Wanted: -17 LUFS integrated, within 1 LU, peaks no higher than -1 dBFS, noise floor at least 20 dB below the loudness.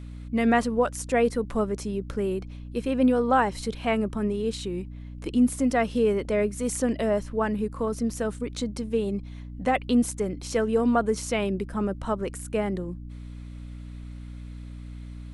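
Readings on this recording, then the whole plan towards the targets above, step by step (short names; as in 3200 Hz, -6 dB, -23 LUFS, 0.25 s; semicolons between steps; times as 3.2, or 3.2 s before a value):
hum 60 Hz; harmonics up to 300 Hz; hum level -37 dBFS; loudness -26.5 LUFS; peak -9.5 dBFS; loudness target -17.0 LUFS
-> de-hum 60 Hz, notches 5; gain +9.5 dB; limiter -1 dBFS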